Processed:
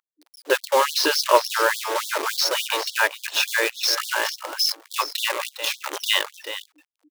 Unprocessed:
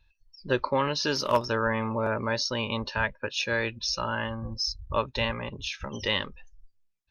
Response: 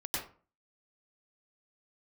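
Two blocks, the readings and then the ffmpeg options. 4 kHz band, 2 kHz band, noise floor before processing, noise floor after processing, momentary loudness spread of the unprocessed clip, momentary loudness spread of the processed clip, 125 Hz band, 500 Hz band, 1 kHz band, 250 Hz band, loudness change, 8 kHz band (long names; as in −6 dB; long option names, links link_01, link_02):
+8.5 dB, +7.0 dB, −68 dBFS, −83 dBFS, 8 LU, 8 LU, below −40 dB, +4.5 dB, +6.5 dB, −5.0 dB, +6.5 dB, +12.5 dB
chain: -filter_complex "[0:a]acrusher=bits=6:dc=4:mix=0:aa=0.000001,aeval=exprs='val(0)+0.00447*(sin(2*PI*60*n/s)+sin(2*PI*2*60*n/s)/2+sin(2*PI*3*60*n/s)/3+sin(2*PI*4*60*n/s)/4+sin(2*PI*5*60*n/s)/5)':channel_layout=same,asplit=2[link_01][link_02];[link_02]aecho=0:1:407:0.237[link_03];[link_01][link_03]amix=inputs=2:normalize=0,afftfilt=real='re*gte(b*sr/1024,270*pow(3300/270,0.5+0.5*sin(2*PI*3.5*pts/sr)))':imag='im*gte(b*sr/1024,270*pow(3300/270,0.5+0.5*sin(2*PI*3.5*pts/sr)))':win_size=1024:overlap=0.75,volume=8dB"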